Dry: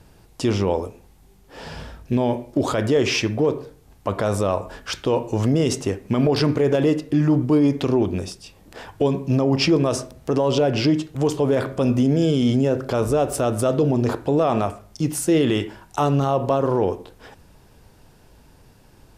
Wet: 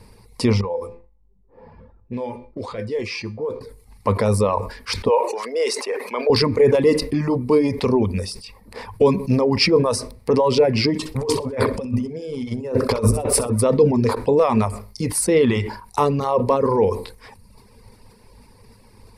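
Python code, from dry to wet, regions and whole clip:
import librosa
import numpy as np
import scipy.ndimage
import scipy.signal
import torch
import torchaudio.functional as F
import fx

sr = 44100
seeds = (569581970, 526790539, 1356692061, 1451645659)

y = fx.chain(x, sr, fx.comb_fb(f0_hz=170.0, decay_s=0.42, harmonics='all', damping=0.0, mix_pct=80),
    fx.env_lowpass(base_hz=650.0, full_db=-25.5), at=(0.61, 3.61))
y = fx.chain(y, sr, fx.highpass(hz=460.0, slope=24),
    fx.high_shelf(hz=8600.0, db=-6.5),
    fx.sustainer(db_per_s=39.0), at=(5.08, 6.3))
y = fx.chain(y, sr, fx.over_compress(threshold_db=-24.0, ratio=-0.5),
    fx.echo_feedback(ms=64, feedback_pct=29, wet_db=-9.5), at=(10.99, 13.5))
y = fx.dereverb_blind(y, sr, rt60_s=0.81)
y = fx.ripple_eq(y, sr, per_octave=0.91, db=11)
y = fx.sustainer(y, sr, db_per_s=97.0)
y = y * 10.0 ** (2.0 / 20.0)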